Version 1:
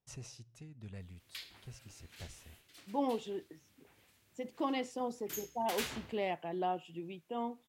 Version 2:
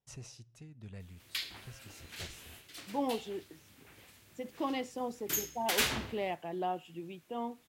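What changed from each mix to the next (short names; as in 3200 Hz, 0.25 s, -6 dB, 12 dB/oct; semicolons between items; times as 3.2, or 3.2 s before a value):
background +9.5 dB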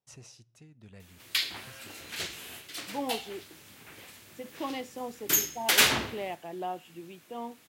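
background +9.0 dB; master: add HPF 170 Hz 6 dB/oct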